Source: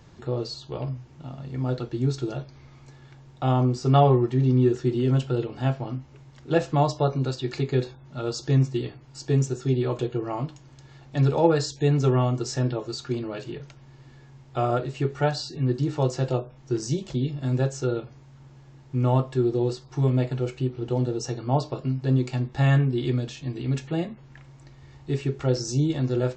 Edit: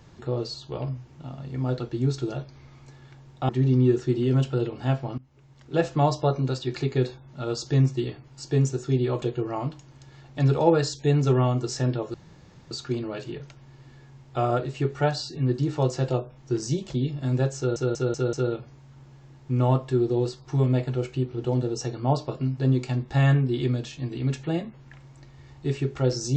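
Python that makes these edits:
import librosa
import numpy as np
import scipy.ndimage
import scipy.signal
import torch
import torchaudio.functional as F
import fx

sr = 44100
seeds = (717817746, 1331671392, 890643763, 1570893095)

y = fx.edit(x, sr, fx.cut(start_s=3.49, length_s=0.77),
    fx.fade_in_from(start_s=5.95, length_s=0.93, curve='qsin', floor_db=-20.5),
    fx.insert_room_tone(at_s=12.91, length_s=0.57),
    fx.stutter(start_s=17.77, slice_s=0.19, count=5), tone=tone)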